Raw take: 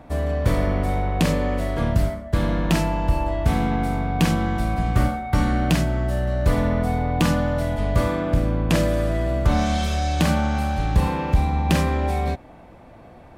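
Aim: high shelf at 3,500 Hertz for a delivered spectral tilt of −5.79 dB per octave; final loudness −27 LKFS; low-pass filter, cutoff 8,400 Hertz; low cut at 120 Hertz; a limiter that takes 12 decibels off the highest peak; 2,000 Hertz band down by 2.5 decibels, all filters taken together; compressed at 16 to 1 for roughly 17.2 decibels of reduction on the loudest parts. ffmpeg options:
ffmpeg -i in.wav -af "highpass=120,lowpass=8400,equalizer=frequency=2000:width_type=o:gain=-4.5,highshelf=frequency=3500:gain=4,acompressor=threshold=-33dB:ratio=16,volume=13dB,alimiter=limit=-18dB:level=0:latency=1" out.wav

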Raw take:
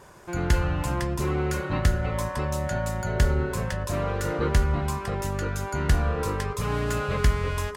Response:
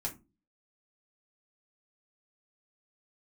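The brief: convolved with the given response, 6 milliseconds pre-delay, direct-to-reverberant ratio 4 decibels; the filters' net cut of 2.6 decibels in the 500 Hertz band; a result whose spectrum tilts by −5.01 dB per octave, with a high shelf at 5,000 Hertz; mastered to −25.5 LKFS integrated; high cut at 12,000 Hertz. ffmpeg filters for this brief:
-filter_complex "[0:a]lowpass=12000,equalizer=frequency=500:width_type=o:gain=-3.5,highshelf=frequency=5000:gain=8.5,asplit=2[link_01][link_02];[1:a]atrim=start_sample=2205,adelay=6[link_03];[link_02][link_03]afir=irnorm=-1:irlink=0,volume=-5dB[link_04];[link_01][link_04]amix=inputs=2:normalize=0,volume=-0.5dB"

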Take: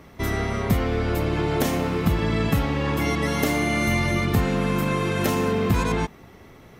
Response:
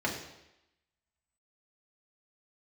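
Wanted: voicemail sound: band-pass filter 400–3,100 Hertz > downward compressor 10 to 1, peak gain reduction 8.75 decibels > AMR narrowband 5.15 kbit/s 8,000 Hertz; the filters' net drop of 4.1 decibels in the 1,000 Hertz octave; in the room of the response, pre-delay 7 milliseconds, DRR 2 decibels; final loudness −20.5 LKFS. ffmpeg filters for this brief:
-filter_complex "[0:a]equalizer=frequency=1000:width_type=o:gain=-5,asplit=2[link_01][link_02];[1:a]atrim=start_sample=2205,adelay=7[link_03];[link_02][link_03]afir=irnorm=-1:irlink=0,volume=-10.5dB[link_04];[link_01][link_04]amix=inputs=2:normalize=0,highpass=400,lowpass=3100,acompressor=threshold=-29dB:ratio=10,volume=15dB" -ar 8000 -c:a libopencore_amrnb -b:a 5150

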